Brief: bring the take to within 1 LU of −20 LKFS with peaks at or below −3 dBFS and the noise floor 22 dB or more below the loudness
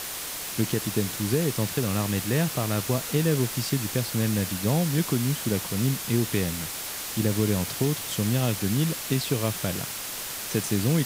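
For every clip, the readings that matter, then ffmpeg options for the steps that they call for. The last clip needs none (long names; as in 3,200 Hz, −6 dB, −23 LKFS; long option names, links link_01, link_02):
background noise floor −34 dBFS; target noise floor −48 dBFS; integrated loudness −26.0 LKFS; sample peak −11.0 dBFS; target loudness −20.0 LKFS
→ -af "afftdn=noise_reduction=14:noise_floor=-34"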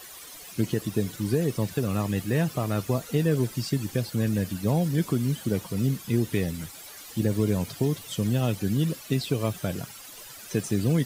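background noise floor −44 dBFS; target noise floor −50 dBFS
→ -af "afftdn=noise_reduction=6:noise_floor=-44"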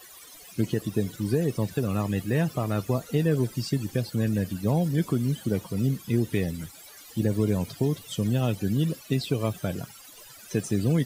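background noise floor −48 dBFS; target noise floor −50 dBFS
→ -af "afftdn=noise_reduction=6:noise_floor=-48"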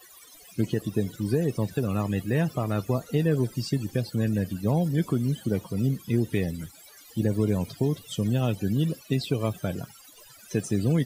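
background noise floor −51 dBFS; integrated loudness −27.5 LKFS; sample peak −12.5 dBFS; target loudness −20.0 LKFS
→ -af "volume=7.5dB"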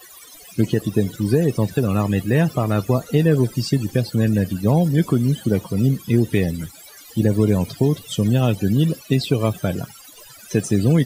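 integrated loudness −20.0 LKFS; sample peak −5.0 dBFS; background noise floor −44 dBFS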